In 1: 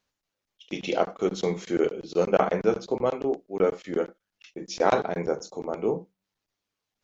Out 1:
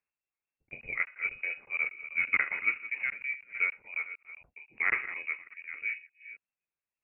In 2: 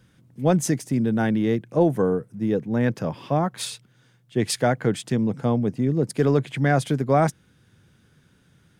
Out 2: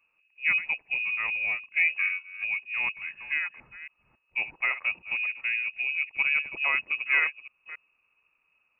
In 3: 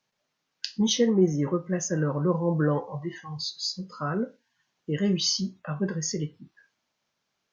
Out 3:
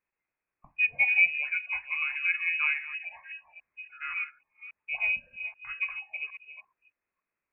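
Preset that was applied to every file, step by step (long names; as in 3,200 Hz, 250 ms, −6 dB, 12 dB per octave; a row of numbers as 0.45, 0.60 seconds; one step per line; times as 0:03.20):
delay that plays each chunk backwards 277 ms, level −9.5 dB
voice inversion scrambler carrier 2,700 Hz
expander for the loud parts 1.5 to 1, over −31 dBFS
normalise the peak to −12 dBFS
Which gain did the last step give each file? −5.5, −5.5, −1.0 decibels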